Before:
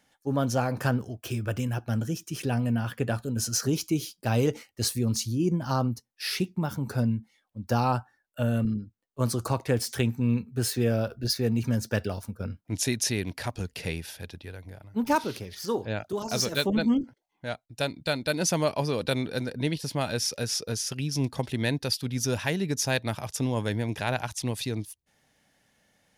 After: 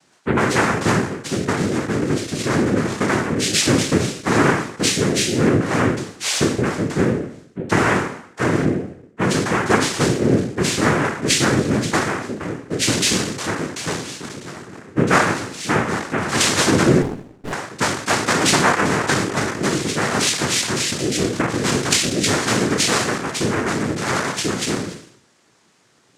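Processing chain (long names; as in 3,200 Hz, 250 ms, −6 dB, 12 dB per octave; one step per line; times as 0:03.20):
peak hold with a decay on every bin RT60 0.70 s
cochlear-implant simulation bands 3
0:17.02–0:17.53: windowed peak hold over 33 samples
level +7.5 dB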